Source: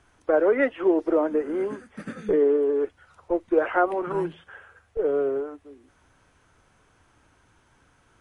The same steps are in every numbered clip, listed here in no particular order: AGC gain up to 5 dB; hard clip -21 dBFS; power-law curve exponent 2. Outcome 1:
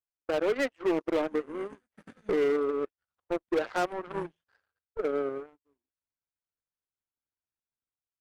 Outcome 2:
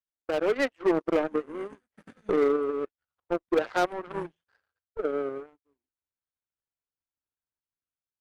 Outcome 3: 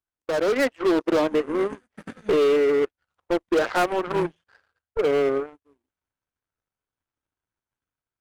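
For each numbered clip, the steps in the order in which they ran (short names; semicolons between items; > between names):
power-law curve > AGC > hard clip; power-law curve > hard clip > AGC; hard clip > power-law curve > AGC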